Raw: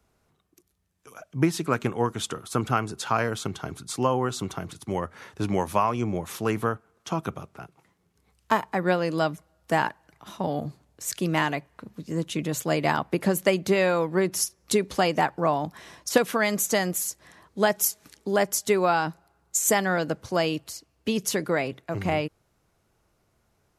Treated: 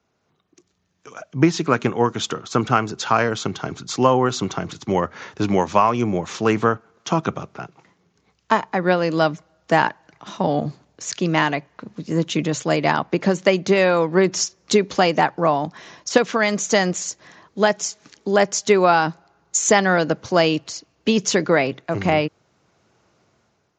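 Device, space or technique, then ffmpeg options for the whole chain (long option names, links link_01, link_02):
Bluetooth headset: -af "highpass=120,dynaudnorm=framelen=200:gausssize=5:maxgain=9.5dB,aresample=16000,aresample=44100" -ar 16000 -c:a sbc -b:a 64k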